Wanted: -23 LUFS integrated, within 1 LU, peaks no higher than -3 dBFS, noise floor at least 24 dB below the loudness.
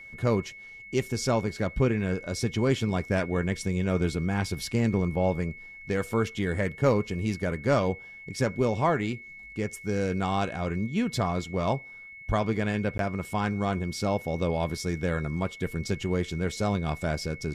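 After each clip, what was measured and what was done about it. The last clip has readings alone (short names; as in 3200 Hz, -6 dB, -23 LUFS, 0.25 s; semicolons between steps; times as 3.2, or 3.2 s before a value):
dropouts 1; longest dropout 12 ms; steady tone 2200 Hz; tone level -43 dBFS; loudness -28.5 LUFS; peak -11.5 dBFS; loudness target -23.0 LUFS
-> interpolate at 12.98, 12 ms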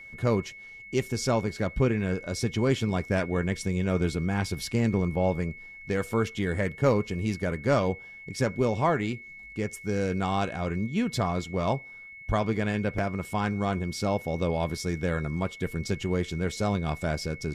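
dropouts 0; steady tone 2200 Hz; tone level -43 dBFS
-> notch 2200 Hz, Q 30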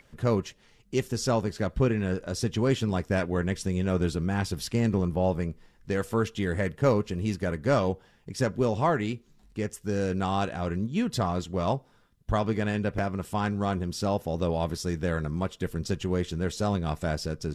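steady tone none; loudness -28.5 LUFS; peak -11.5 dBFS; loudness target -23.0 LUFS
-> gain +5.5 dB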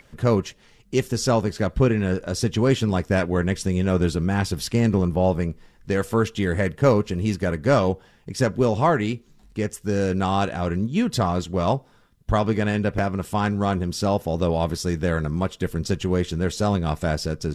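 loudness -23.0 LUFS; peak -6.0 dBFS; noise floor -55 dBFS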